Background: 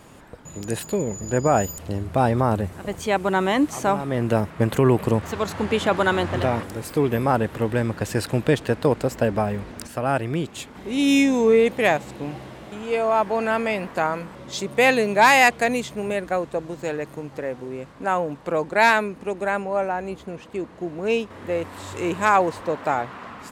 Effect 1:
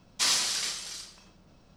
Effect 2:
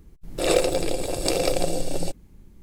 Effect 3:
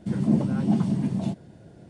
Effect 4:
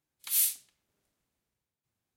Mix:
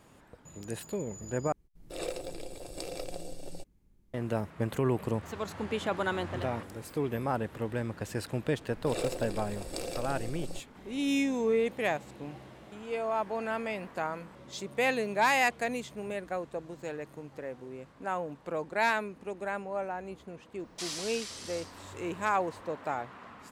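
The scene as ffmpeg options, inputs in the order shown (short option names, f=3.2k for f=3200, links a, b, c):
-filter_complex "[2:a]asplit=2[a][b];[0:a]volume=-11dB[c];[1:a]acompressor=threshold=-33dB:ratio=2:attack=0.28:release=278:knee=1:detection=peak[d];[c]asplit=2[e][f];[e]atrim=end=1.524[g];[a]atrim=end=2.62,asetpts=PTS-STARTPTS,volume=-16.5dB[h];[f]atrim=start=4.136[i];[b]atrim=end=2.62,asetpts=PTS-STARTPTS,volume=-14.5dB,afade=t=in:d=0.004:c=hsin,afade=t=out:st=2.616:d=0.004:c=hsin,adelay=8480[j];[d]atrim=end=1.76,asetpts=PTS-STARTPTS,volume=-4.5dB,afade=t=in:d=0.004:c=hsin,afade=t=out:st=1.756:d=0.004:c=hsin,adelay=20590[k];[g][h]acrossfade=d=0.004:c1=hsin:c2=hsin[l];[l][i]acrossfade=d=0.004:c1=hsin:c2=hsin[m];[m][j][k]amix=inputs=3:normalize=0"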